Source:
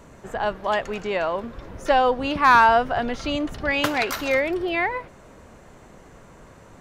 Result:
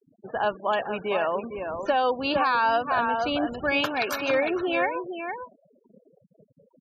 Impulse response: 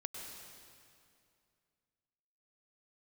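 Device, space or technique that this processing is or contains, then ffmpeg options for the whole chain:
PA system with an anti-feedback notch: -filter_complex "[0:a]asplit=3[link_01][link_02][link_03];[link_01]afade=type=out:start_time=1.97:duration=0.02[link_04];[link_02]highshelf=frequency=6900:width_type=q:width=3:gain=-12.5,afade=type=in:start_time=1.97:duration=0.02,afade=type=out:start_time=2.94:duration=0.02[link_05];[link_03]afade=type=in:start_time=2.94:duration=0.02[link_06];[link_04][link_05][link_06]amix=inputs=3:normalize=0,highpass=frequency=200:poles=1,asuperstop=centerf=2000:order=12:qfactor=7.3,asplit=2[link_07][link_08];[link_08]adelay=454.8,volume=-7dB,highshelf=frequency=4000:gain=-10.2[link_09];[link_07][link_09]amix=inputs=2:normalize=0,alimiter=limit=-13.5dB:level=0:latency=1:release=392,afftfilt=real='re*gte(hypot(re,im),0.02)':imag='im*gte(hypot(re,im),0.02)':win_size=1024:overlap=0.75"

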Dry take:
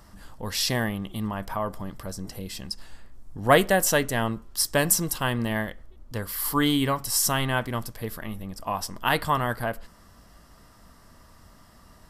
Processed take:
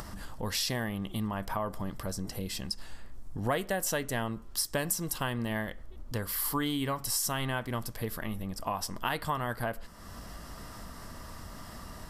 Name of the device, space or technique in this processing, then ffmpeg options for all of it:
upward and downward compression: -af "acompressor=mode=upward:threshold=-34dB:ratio=2.5,acompressor=threshold=-29dB:ratio=4"

